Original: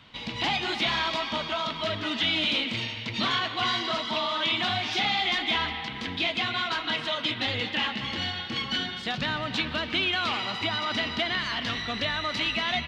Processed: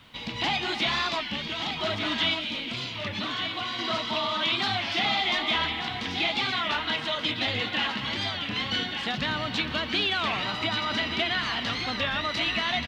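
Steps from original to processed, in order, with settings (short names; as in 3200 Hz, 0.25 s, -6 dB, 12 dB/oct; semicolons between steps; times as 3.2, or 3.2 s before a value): 1.22–1.77 band shelf 860 Hz -9.5 dB; 2.33–3.79 compressor, threshold -30 dBFS, peak gain reduction 7.5 dB; added noise pink -67 dBFS; on a send: echo 1.18 s -7.5 dB; on the sum: record warp 33 1/3 rpm, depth 160 cents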